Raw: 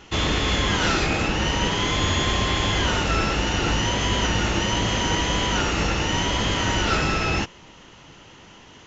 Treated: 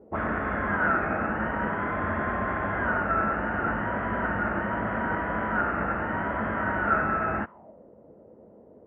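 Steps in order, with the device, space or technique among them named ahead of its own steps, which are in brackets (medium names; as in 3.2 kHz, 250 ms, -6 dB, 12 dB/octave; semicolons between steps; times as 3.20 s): envelope filter bass rig (touch-sensitive low-pass 450–1500 Hz up, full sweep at -21 dBFS; cabinet simulation 68–2100 Hz, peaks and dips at 130 Hz -5 dB, 220 Hz +8 dB, 640 Hz +9 dB); trim -8.5 dB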